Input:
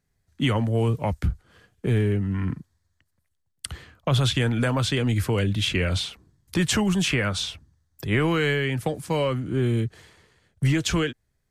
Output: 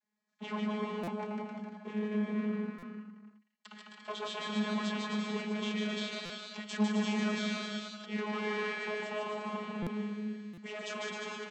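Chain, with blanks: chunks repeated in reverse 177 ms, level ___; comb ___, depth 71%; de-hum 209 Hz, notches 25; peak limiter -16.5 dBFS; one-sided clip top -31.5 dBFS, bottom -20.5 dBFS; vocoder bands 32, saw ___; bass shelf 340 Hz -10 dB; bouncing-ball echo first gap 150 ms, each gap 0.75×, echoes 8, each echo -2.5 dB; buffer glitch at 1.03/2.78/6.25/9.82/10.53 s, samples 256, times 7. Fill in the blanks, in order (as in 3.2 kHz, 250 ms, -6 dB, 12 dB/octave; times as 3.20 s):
-8 dB, 3.7 ms, 211 Hz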